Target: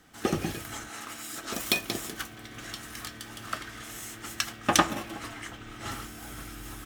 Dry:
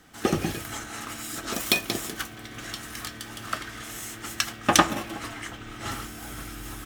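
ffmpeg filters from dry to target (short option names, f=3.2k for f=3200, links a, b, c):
-filter_complex "[0:a]asettb=1/sr,asplit=3[a][b][c];[a]atrim=end=0.894[d];[b]atrim=start=0.89:end=1.52,asetpts=PTS-STARTPTS,afade=t=in:d=0.004:c=qsin,afade=t=out:st=0.626:d=0.004:c=qsin,lowshelf=f=180:g=-9.5[e];[c]atrim=start=1.516[f];[d][e]acrossfade=d=0.004:c1=hsin:c2=qsin[g];[g][f]acrossfade=d=0.004:c1=qsin:c2=hsin,volume=-3.5dB"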